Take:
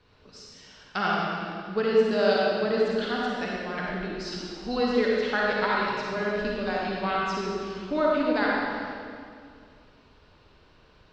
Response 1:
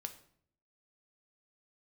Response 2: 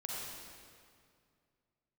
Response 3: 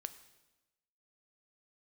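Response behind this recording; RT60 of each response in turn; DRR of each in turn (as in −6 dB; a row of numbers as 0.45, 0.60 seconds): 2; 0.60, 2.2, 1.1 seconds; 6.5, −4.5, 10.5 decibels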